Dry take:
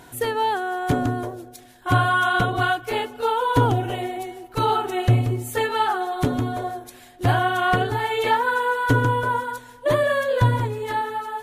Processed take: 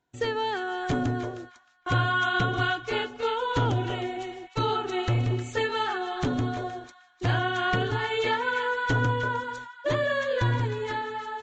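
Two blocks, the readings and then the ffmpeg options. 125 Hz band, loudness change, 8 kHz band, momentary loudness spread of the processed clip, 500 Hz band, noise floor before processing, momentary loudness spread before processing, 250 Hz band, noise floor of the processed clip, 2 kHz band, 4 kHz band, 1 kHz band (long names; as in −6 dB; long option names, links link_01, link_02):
−5.0 dB, −5.5 dB, −8.0 dB, 8 LU, −5.0 dB, −47 dBFS, 9 LU, −4.5 dB, −58 dBFS, −3.5 dB, −1.5 dB, −7.5 dB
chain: -filter_complex "[0:a]agate=range=-30dB:threshold=-38dB:ratio=16:detection=peak,acrossover=split=560|1200[link_01][link_02][link_03];[link_01]asoftclip=type=hard:threshold=-20dB[link_04];[link_02]acompressor=threshold=-39dB:ratio=6[link_05];[link_03]asplit=2[link_06][link_07];[link_07]adelay=310,lowpass=frequency=4400:poles=1,volume=-8dB,asplit=2[link_08][link_09];[link_09]adelay=310,lowpass=frequency=4400:poles=1,volume=0.22,asplit=2[link_10][link_11];[link_11]adelay=310,lowpass=frequency=4400:poles=1,volume=0.22[link_12];[link_06][link_08][link_10][link_12]amix=inputs=4:normalize=0[link_13];[link_04][link_05][link_13]amix=inputs=3:normalize=0,aresample=16000,aresample=44100,volume=-2dB"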